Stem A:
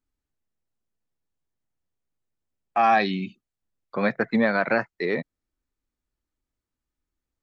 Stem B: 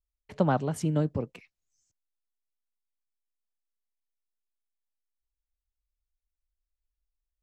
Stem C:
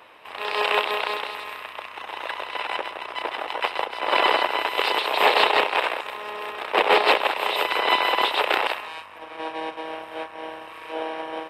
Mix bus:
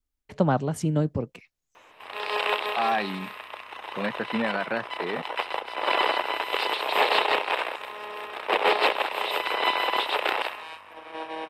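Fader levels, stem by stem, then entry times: -6.5 dB, +2.5 dB, -4.0 dB; 0.00 s, 0.00 s, 1.75 s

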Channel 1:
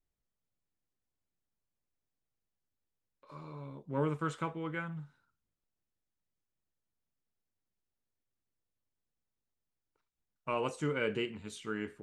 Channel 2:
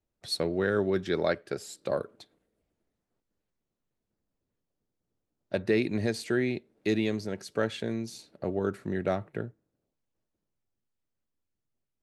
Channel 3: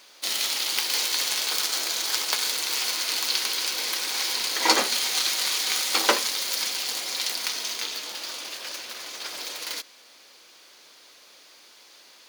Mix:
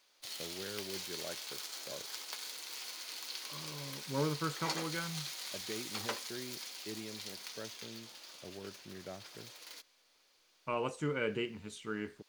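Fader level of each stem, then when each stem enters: -1.5 dB, -18.0 dB, -18.0 dB; 0.20 s, 0.00 s, 0.00 s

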